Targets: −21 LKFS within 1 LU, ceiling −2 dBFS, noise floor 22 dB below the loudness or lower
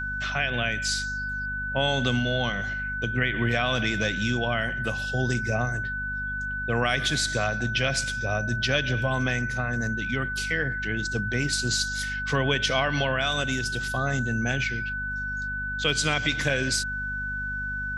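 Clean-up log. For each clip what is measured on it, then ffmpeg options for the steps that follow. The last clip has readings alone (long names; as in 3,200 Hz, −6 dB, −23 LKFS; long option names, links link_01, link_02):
mains hum 50 Hz; hum harmonics up to 250 Hz; level of the hum −34 dBFS; interfering tone 1,500 Hz; level of the tone −29 dBFS; integrated loudness −26.0 LKFS; sample peak −9.5 dBFS; target loudness −21.0 LKFS
→ -af "bandreject=frequency=50:width_type=h:width=4,bandreject=frequency=100:width_type=h:width=4,bandreject=frequency=150:width_type=h:width=4,bandreject=frequency=200:width_type=h:width=4,bandreject=frequency=250:width_type=h:width=4"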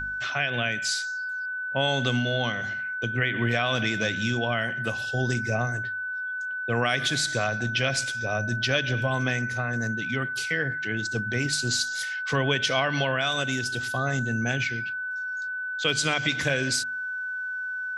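mains hum none found; interfering tone 1,500 Hz; level of the tone −29 dBFS
→ -af "bandreject=frequency=1500:width=30"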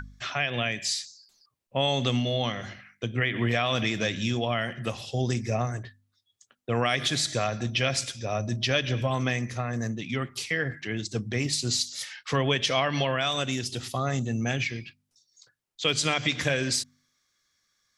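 interfering tone none found; integrated loudness −27.5 LKFS; sample peak −10.0 dBFS; target loudness −21.0 LKFS
→ -af "volume=6.5dB"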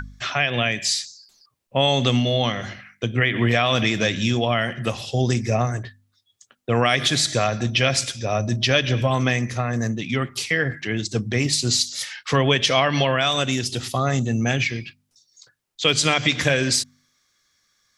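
integrated loudness −21.0 LKFS; sample peak −3.5 dBFS; background noise floor −69 dBFS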